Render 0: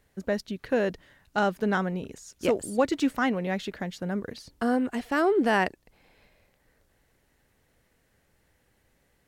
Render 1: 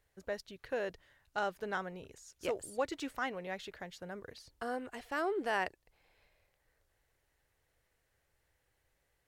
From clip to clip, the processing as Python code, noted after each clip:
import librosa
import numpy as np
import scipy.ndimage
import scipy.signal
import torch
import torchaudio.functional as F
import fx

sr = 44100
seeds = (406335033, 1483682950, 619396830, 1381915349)

y = fx.peak_eq(x, sr, hz=220.0, db=-12.5, octaves=1.0)
y = y * 10.0 ** (-8.5 / 20.0)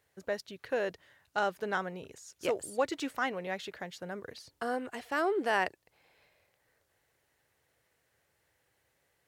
y = scipy.signal.sosfilt(scipy.signal.butter(2, 110.0, 'highpass', fs=sr, output='sos'), x)
y = y * 10.0 ** (4.5 / 20.0)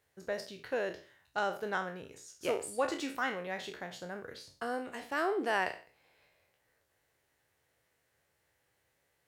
y = fx.spec_trails(x, sr, decay_s=0.39)
y = y * 10.0 ** (-3.0 / 20.0)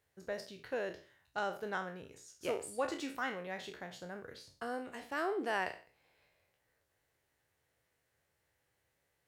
y = fx.low_shelf(x, sr, hz=160.0, db=4.0)
y = y * 10.0 ** (-4.0 / 20.0)